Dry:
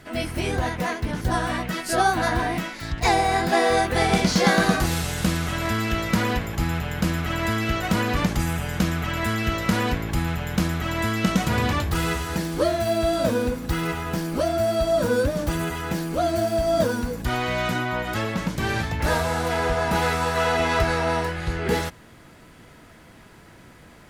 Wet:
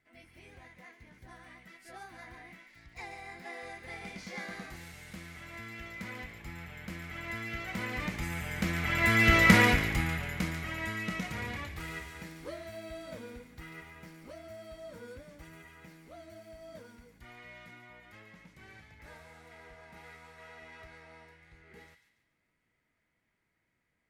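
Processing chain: Doppler pass-by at 9.44, 7 m/s, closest 1.7 m; bell 2100 Hz +12 dB 0.43 oct; thin delay 0.142 s, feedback 38%, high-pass 2000 Hz, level -7.5 dB; gain +1 dB

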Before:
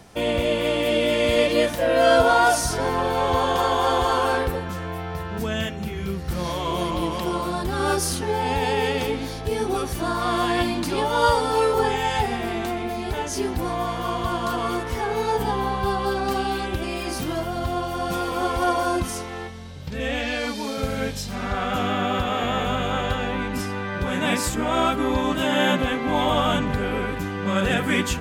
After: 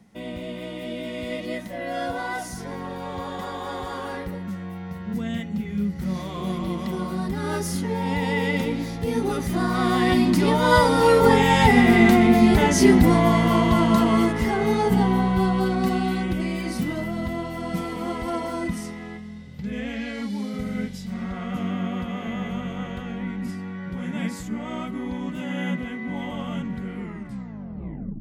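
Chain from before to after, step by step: tape stop at the end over 1.29 s; Doppler pass-by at 12.43, 16 m/s, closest 17 m; small resonant body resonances 200/2000 Hz, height 17 dB, ringing for 55 ms; gain +6.5 dB

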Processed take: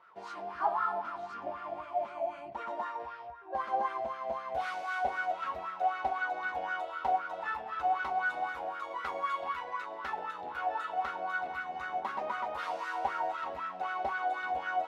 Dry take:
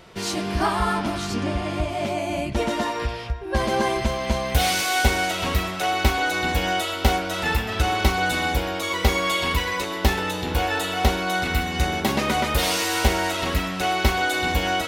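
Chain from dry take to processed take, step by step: 8.25–9.42 modulation noise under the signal 16 dB; wah 3.9 Hz 680–1400 Hz, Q 6.6

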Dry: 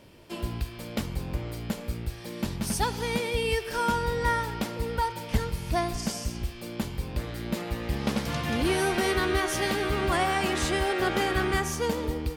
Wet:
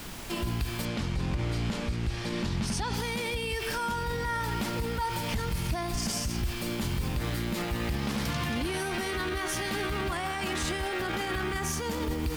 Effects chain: added noise pink -49 dBFS; 0.85–2.94 LPF 6200 Hz 12 dB/oct; limiter -29.5 dBFS, peak gain reduction 17 dB; bell 520 Hz -5.5 dB 0.99 oct; gain +8 dB

